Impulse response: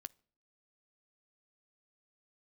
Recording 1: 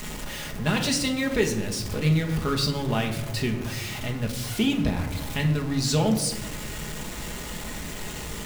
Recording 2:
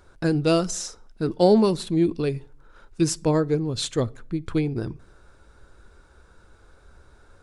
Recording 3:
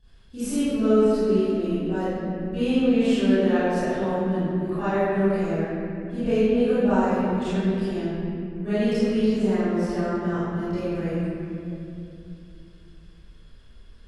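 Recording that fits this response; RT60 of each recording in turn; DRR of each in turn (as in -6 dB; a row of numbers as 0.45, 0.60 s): 2; 1.1, 0.50, 2.7 s; 1.5, 16.5, -19.0 dB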